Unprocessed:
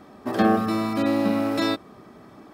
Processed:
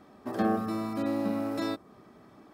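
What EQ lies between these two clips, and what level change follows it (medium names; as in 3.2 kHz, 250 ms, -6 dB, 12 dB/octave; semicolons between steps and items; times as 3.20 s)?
dynamic bell 3 kHz, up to -6 dB, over -43 dBFS, Q 0.82; -7.5 dB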